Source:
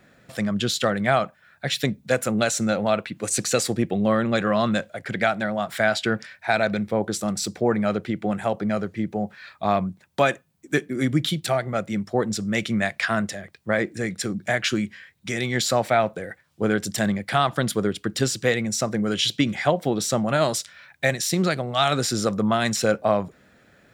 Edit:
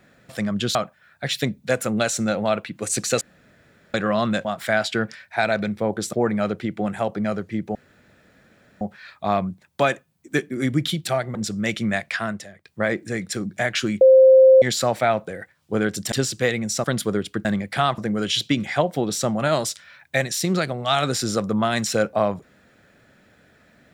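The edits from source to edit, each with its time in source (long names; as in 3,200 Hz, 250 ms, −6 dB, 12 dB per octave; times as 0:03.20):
0:00.75–0:01.16: remove
0:03.62–0:04.35: fill with room tone
0:04.86–0:05.56: remove
0:07.24–0:07.58: remove
0:09.20: splice in room tone 1.06 s
0:11.74–0:12.24: remove
0:12.84–0:13.54: fade out, to −12 dB
0:14.90–0:15.51: beep over 525 Hz −7.5 dBFS
0:17.01–0:17.54: swap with 0:18.15–0:18.87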